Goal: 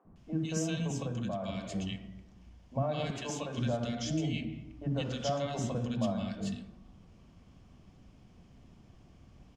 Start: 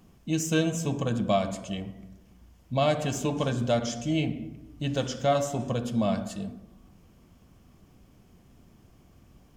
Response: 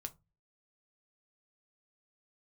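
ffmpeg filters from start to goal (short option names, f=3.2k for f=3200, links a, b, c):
-filter_complex "[0:a]lowpass=5.5k,alimiter=limit=-23dB:level=0:latency=1:release=84,asettb=1/sr,asplit=3[a][b][c];[a]atrim=end=3.054[d];[b]atrim=start=3.05:end=3.53,asetpts=PTS-STARTPTS,afade=t=in:d=0.004:c=qsin,afade=t=out:st=0.476:d=0.004:c=qsin,lowshelf=f=330:g=-10.5[e];[c]atrim=start=3.526[f];[d][e]acrossfade=d=0.004:c1=hsin:c2=qsin[g];[g][f]acrossfade=d=0.004:c1=qsin:c2=hsin,acrossover=split=370|1400[h][i][j];[h]adelay=50[k];[j]adelay=160[l];[k][i][l]amix=inputs=3:normalize=0,asplit=3[m][n][o];[m]afade=t=out:st=0.87:d=0.02[p];[n]acompressor=threshold=-32dB:ratio=4,afade=t=in:st=0.87:d=0.02,afade=t=out:st=1.69:d=0.02[q];[o]afade=t=in:st=1.69:d=0.02[r];[p][q][r]amix=inputs=3:normalize=0"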